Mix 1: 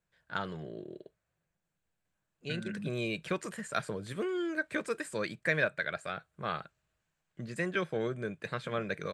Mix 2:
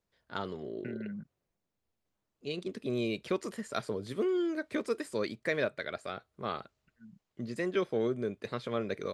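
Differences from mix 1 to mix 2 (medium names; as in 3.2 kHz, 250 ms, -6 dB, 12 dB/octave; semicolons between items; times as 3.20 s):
second voice: entry -1.65 s; master: add graphic EQ with 31 bands 160 Hz -9 dB, 250 Hz +8 dB, 400 Hz +6 dB, 1.6 kHz -9 dB, 2.5 kHz -4 dB, 5 kHz +4 dB, 8 kHz -7 dB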